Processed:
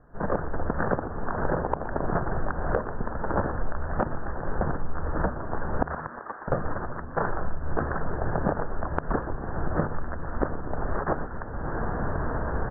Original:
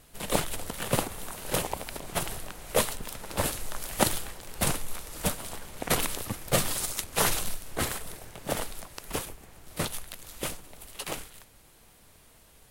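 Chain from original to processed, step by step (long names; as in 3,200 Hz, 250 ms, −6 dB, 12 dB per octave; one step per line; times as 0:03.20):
camcorder AGC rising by 36 dB per second
Butterworth low-pass 1,700 Hz 96 dB per octave
downward compressor, threshold −23 dBFS, peak gain reduction 10 dB
0:05.87–0:06.48: high-pass filter 830 Hz 12 dB per octave
echo with shifted repeats 120 ms, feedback 51%, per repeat −83 Hz, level −13 dB
level +2 dB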